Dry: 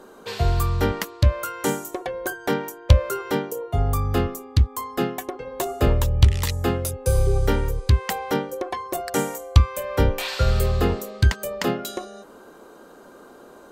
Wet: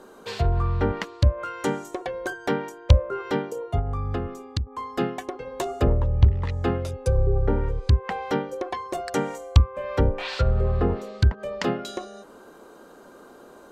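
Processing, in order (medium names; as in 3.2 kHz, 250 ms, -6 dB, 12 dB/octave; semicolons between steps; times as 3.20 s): low-pass that closes with the level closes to 890 Hz, closed at -14.5 dBFS; 3.79–4.67 s: compression 10:1, threshold -22 dBFS, peak gain reduction 11 dB; trim -1.5 dB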